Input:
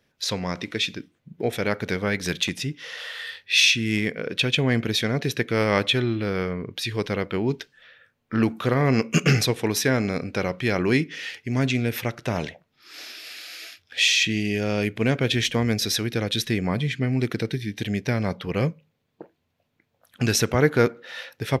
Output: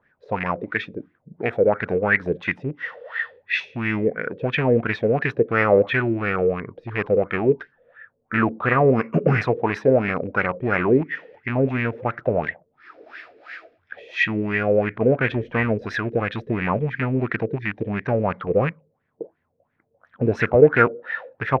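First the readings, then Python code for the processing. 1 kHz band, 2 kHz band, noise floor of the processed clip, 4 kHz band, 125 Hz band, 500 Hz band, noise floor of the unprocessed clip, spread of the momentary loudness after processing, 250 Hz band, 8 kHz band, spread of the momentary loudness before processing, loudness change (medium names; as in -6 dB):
+6.5 dB, +3.0 dB, -71 dBFS, -15.0 dB, -0.5 dB, +6.5 dB, -73 dBFS, 12 LU, +0.5 dB, under -25 dB, 13 LU, +2.0 dB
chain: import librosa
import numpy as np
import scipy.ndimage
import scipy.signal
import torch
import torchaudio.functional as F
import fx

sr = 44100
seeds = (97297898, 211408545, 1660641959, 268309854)

y = fx.rattle_buzz(x, sr, strikes_db=-27.0, level_db=-17.0)
y = fx.filter_lfo_lowpass(y, sr, shape='sine', hz=2.9, low_hz=450.0, high_hz=1900.0, q=6.0)
y = F.gain(torch.from_numpy(y), -1.0).numpy()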